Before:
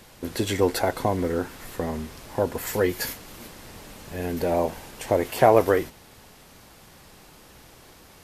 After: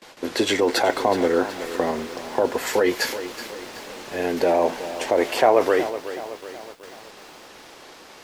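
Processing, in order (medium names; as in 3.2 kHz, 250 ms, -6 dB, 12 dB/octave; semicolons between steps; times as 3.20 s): gate with hold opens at -40 dBFS; three-band isolator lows -19 dB, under 260 Hz, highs -14 dB, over 7.2 kHz; in parallel at 0 dB: compressor with a negative ratio -25 dBFS, ratio -0.5; on the sum: bit-crushed delay 373 ms, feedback 55%, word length 7-bit, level -12.5 dB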